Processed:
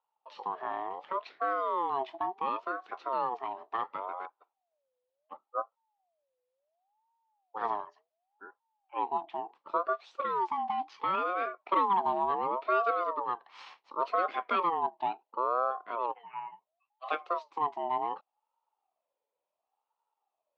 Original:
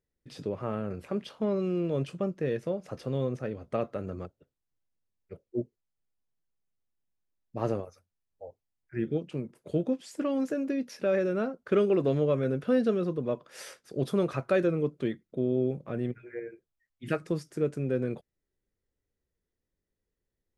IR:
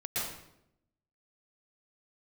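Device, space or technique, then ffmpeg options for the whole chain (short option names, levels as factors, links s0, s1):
voice changer toy: -filter_complex "[0:a]aeval=exprs='val(0)*sin(2*PI*710*n/s+710*0.3/0.7*sin(2*PI*0.7*n/s))':c=same,highpass=580,equalizer=f=860:t=q:w=4:g=4,equalizer=f=1500:t=q:w=4:g=-4,equalizer=f=2100:t=q:w=4:g=-4,lowpass=f=3800:w=0.5412,lowpass=f=3800:w=1.3066,asettb=1/sr,asplit=3[s0][s1][s2];[s0]atrim=end=12.054[s3];[s1]atrim=start=12.05:end=12.57,asetpts=PTS-STARTPTS,afade=t=in:d=0.004:c=qsin,afade=t=out:st=0.516:d=0.004:c=qsin,tiltshelf=f=650:g=4[s4];[s2]atrim=start=12.566[s5];[s3][s4]acrossfade=d=0.004:c1=hsin:c2=qsin[s6];[s6][s5]acrossfade=d=0.004:c1=qsin:c2=hsin,volume=1.33"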